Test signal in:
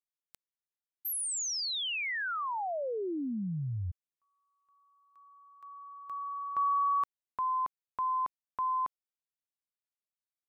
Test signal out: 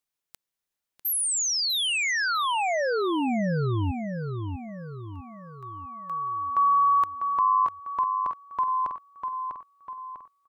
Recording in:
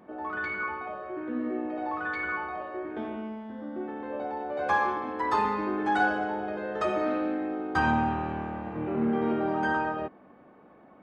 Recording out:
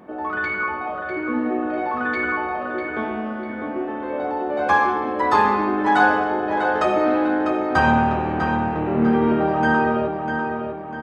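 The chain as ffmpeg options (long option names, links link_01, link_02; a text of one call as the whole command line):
ffmpeg -i in.wav -filter_complex "[0:a]asplit=2[link_01][link_02];[link_02]adelay=648,lowpass=frequency=4300:poles=1,volume=-6dB,asplit=2[link_03][link_04];[link_04]adelay=648,lowpass=frequency=4300:poles=1,volume=0.47,asplit=2[link_05][link_06];[link_06]adelay=648,lowpass=frequency=4300:poles=1,volume=0.47,asplit=2[link_07][link_08];[link_08]adelay=648,lowpass=frequency=4300:poles=1,volume=0.47,asplit=2[link_09][link_10];[link_10]adelay=648,lowpass=frequency=4300:poles=1,volume=0.47,asplit=2[link_11][link_12];[link_12]adelay=648,lowpass=frequency=4300:poles=1,volume=0.47[link_13];[link_01][link_03][link_05][link_07][link_09][link_11][link_13]amix=inputs=7:normalize=0,volume=8dB" out.wav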